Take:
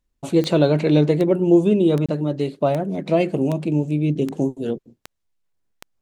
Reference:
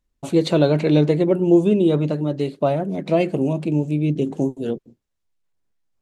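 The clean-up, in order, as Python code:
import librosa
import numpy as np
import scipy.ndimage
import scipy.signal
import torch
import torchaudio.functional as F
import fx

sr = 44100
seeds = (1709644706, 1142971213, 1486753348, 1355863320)

y = fx.fix_declick_ar(x, sr, threshold=10.0)
y = fx.fix_interpolate(y, sr, at_s=(2.06,), length_ms=26.0)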